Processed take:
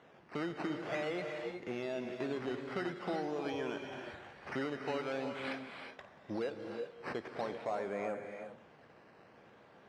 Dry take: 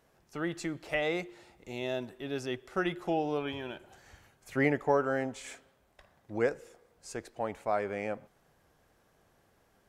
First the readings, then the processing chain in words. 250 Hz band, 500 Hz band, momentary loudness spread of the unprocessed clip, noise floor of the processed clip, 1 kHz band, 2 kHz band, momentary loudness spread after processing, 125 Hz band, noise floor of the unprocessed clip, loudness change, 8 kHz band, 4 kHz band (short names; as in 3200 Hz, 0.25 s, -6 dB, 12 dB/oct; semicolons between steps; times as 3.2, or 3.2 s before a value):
-4.5 dB, -5.0 dB, 17 LU, -61 dBFS, -5.5 dB, -6.0 dB, 10 LU, -7.0 dB, -69 dBFS, -6.0 dB, under -10 dB, -4.0 dB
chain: compressor 6:1, threshold -41 dBFS, peak gain reduction 18.5 dB; decimation with a swept rate 9×, swing 100% 0.47 Hz; soft clip -36.5 dBFS, distortion -15 dB; BPF 150–3100 Hz; non-linear reverb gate 0.4 s rising, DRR 4.5 dB; gain +8 dB